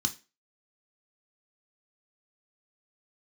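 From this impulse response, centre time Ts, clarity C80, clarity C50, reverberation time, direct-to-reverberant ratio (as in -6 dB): 7 ms, 23.0 dB, 16.5 dB, 0.30 s, 5.0 dB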